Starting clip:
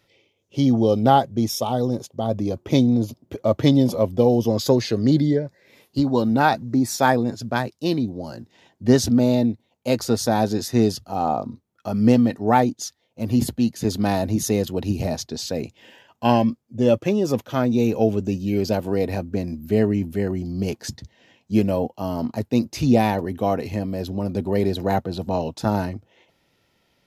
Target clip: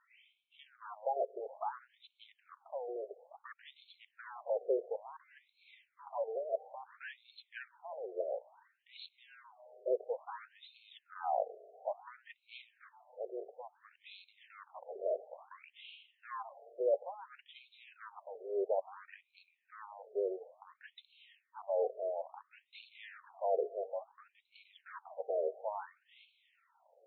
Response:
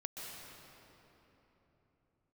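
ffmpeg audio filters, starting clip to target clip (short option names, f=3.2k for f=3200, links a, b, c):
-filter_complex "[0:a]equalizer=f=79:w=6.3:g=12,aeval=exprs='(tanh(10*val(0)+0.75)-tanh(0.75))/10':c=same,areverse,acompressor=threshold=-39dB:ratio=4,areverse,equalizer=f=500:t=o:w=1:g=5,equalizer=f=2k:t=o:w=1:g=-5,equalizer=f=8k:t=o:w=1:g=-9,asplit=2[a][b];[1:a]atrim=start_sample=2205[c];[b][c]afir=irnorm=-1:irlink=0,volume=-18dB[d];[a][d]amix=inputs=2:normalize=0,afftfilt=real='re*between(b*sr/1024,500*pow(3100/500,0.5+0.5*sin(2*PI*0.58*pts/sr))/1.41,500*pow(3100/500,0.5+0.5*sin(2*PI*0.58*pts/sr))*1.41)':imag='im*between(b*sr/1024,500*pow(3100/500,0.5+0.5*sin(2*PI*0.58*pts/sr))/1.41,500*pow(3100/500,0.5+0.5*sin(2*PI*0.58*pts/sr))*1.41)':win_size=1024:overlap=0.75,volume=6.5dB"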